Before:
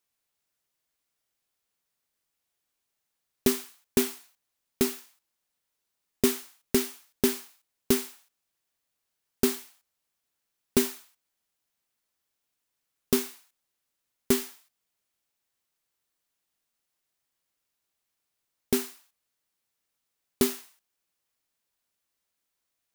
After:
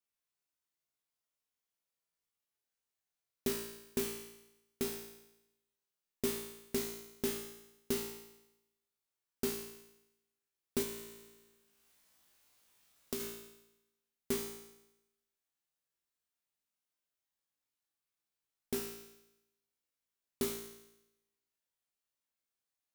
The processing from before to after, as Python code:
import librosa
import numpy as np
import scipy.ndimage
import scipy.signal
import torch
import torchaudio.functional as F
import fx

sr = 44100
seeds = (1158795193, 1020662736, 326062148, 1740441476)

y = fx.comb_fb(x, sr, f0_hz=57.0, decay_s=0.9, harmonics='all', damping=0.0, mix_pct=90)
y = fx.band_squash(y, sr, depth_pct=70, at=(10.82, 13.2))
y = y * librosa.db_to_amplitude(1.0)